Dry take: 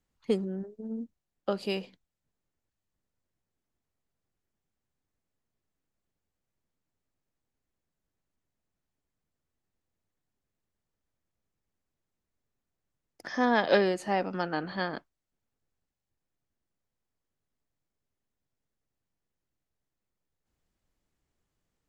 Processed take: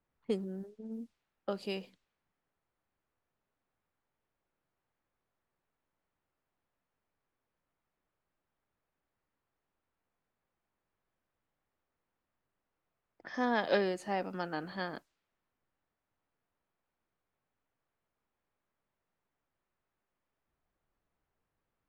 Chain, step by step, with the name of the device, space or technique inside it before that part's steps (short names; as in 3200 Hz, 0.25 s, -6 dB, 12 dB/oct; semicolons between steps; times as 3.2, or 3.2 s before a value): cassette deck with a dynamic noise filter (white noise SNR 34 dB; low-pass opened by the level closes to 1400 Hz, open at -31.5 dBFS); gain -6 dB